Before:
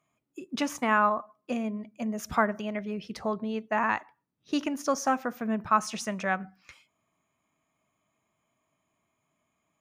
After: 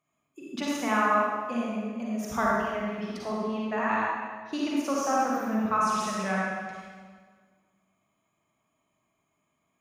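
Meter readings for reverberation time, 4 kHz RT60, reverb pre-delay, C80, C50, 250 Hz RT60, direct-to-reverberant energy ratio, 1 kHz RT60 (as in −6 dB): 1.7 s, 1.3 s, 39 ms, −1.0 dB, −4.0 dB, 1.8 s, −5.5 dB, 1.6 s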